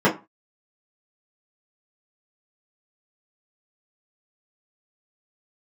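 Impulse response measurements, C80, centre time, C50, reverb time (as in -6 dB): 20.5 dB, 18 ms, 13.0 dB, 0.25 s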